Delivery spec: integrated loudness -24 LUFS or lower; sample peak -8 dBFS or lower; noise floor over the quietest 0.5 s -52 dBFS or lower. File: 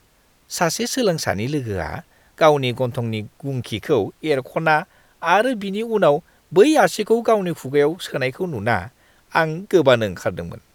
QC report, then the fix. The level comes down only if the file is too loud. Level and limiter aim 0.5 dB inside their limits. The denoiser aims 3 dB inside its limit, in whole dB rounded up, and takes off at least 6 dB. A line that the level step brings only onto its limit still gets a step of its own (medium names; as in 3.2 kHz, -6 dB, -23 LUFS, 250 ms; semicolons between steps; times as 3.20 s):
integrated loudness -20.0 LUFS: fail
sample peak -1.5 dBFS: fail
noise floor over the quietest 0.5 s -58 dBFS: pass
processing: trim -4.5 dB; peak limiter -8.5 dBFS